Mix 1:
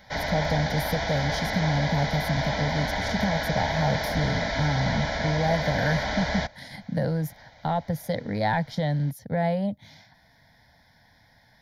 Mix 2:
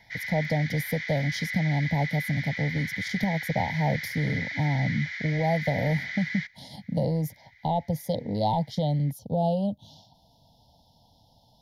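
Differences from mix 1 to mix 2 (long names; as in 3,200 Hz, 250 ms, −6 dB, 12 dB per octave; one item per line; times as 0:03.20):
speech: add linear-phase brick-wall band-stop 1,000–2,600 Hz
background: add four-pole ladder high-pass 1,900 Hz, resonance 75%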